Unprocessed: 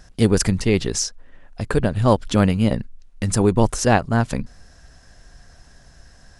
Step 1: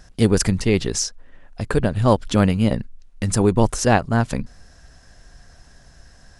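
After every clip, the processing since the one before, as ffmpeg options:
-af anull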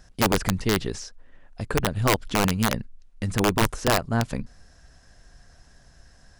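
-filter_complex "[0:a]acrossover=split=3500[a][b];[b]acompressor=threshold=-34dB:ratio=4:attack=1:release=60[c];[a][c]amix=inputs=2:normalize=0,aeval=exprs='(mod(2.24*val(0)+1,2)-1)/2.24':c=same,volume=-5dB"

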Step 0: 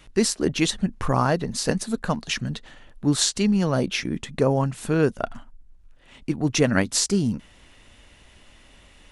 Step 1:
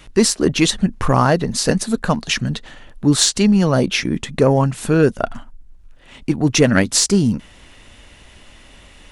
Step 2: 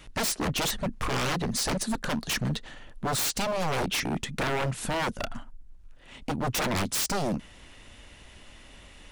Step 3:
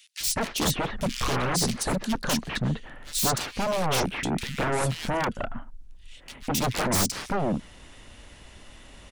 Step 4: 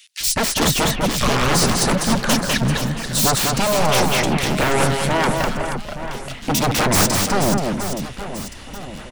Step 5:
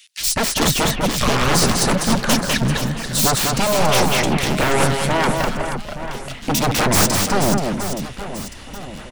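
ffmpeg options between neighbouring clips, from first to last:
-af "acontrast=60,volume=1dB"
-af "aeval=exprs='0.141*(abs(mod(val(0)/0.141+3,4)-2)-1)':c=same,volume=-5.5dB"
-filter_complex "[0:a]acrossover=split=2500[a][b];[a]adelay=200[c];[c][b]amix=inputs=2:normalize=0,volume=2.5dB"
-af "aecho=1:1:200|480|872|1421|2189:0.631|0.398|0.251|0.158|0.1,volume=7dB"
-af "aeval=exprs='0.631*(cos(1*acos(clip(val(0)/0.631,-1,1)))-cos(1*PI/2))+0.141*(cos(2*acos(clip(val(0)/0.631,-1,1)))-cos(2*PI/2))':c=same"

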